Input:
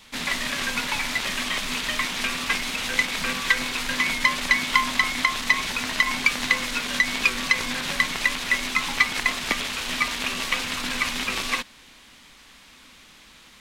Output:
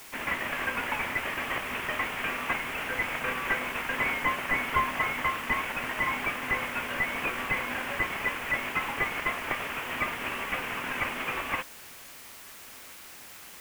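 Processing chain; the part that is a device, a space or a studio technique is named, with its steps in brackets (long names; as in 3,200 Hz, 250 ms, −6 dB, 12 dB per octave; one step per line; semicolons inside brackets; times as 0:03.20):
army field radio (band-pass filter 380–3,100 Hz; variable-slope delta modulation 16 kbit/s; white noise bed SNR 16 dB)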